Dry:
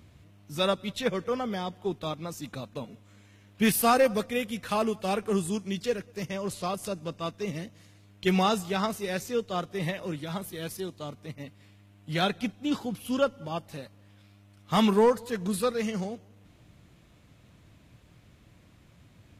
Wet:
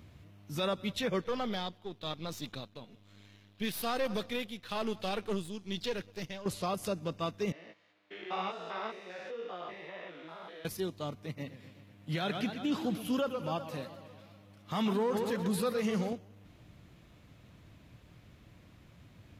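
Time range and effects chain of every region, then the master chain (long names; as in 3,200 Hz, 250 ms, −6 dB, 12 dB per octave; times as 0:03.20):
0:01.21–0:06.46: gain on one half-wave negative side −7 dB + parametric band 3,800 Hz +9 dB 0.88 octaves + shaped tremolo triangle 1.1 Hz, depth 70%
0:07.52–0:10.65: spectrum averaged block by block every 200 ms + band-pass filter 510–3,100 Hz + chorus effect 2 Hz, delay 16 ms, depth 3 ms
0:11.23–0:16.13: high-pass filter 88 Hz + feedback echo with a swinging delay time 124 ms, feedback 66%, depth 166 cents, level −13.5 dB
whole clip: parametric band 8,600 Hz −5.5 dB 0.87 octaves; brickwall limiter −23.5 dBFS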